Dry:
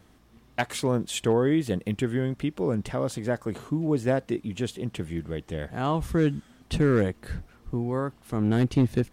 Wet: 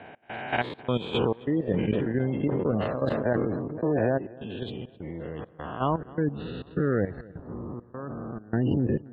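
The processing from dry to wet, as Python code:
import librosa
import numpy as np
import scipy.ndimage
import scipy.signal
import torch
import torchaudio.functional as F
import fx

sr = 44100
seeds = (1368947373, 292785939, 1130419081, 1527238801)

y = fx.spec_swells(x, sr, rise_s=1.49)
y = scipy.signal.sosfilt(scipy.signal.butter(4, 67.0, 'highpass', fs=sr, output='sos'), y)
y = fx.spec_gate(y, sr, threshold_db=-25, keep='strong')
y = fx.curve_eq(y, sr, hz=(940.0, 4000.0, 5800.0), db=(0, -1, -30))
y = fx.level_steps(y, sr, step_db=12)
y = fx.dmg_noise_band(y, sr, seeds[0], low_hz=100.0, high_hz=740.0, level_db=-51.0)
y = fx.step_gate(y, sr, bpm=102, pattern='x.xxx.xx', floor_db=-24.0, edge_ms=4.5)
y = fx.echo_filtered(y, sr, ms=263, feedback_pct=49, hz=4300.0, wet_db=-21.5)
y = fx.sustainer(y, sr, db_per_s=26.0, at=(1.61, 4.17))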